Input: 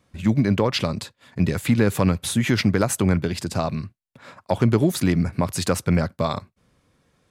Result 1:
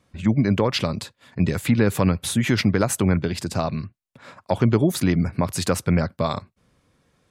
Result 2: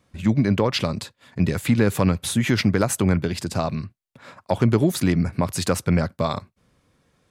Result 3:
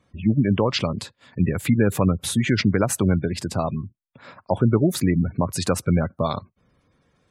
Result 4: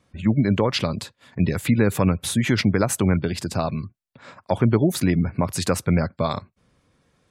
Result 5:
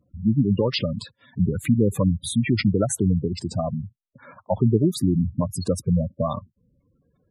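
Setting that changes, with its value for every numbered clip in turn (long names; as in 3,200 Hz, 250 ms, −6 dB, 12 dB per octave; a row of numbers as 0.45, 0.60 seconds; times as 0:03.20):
gate on every frequency bin, under each frame's peak: −45, −60, −25, −35, −10 decibels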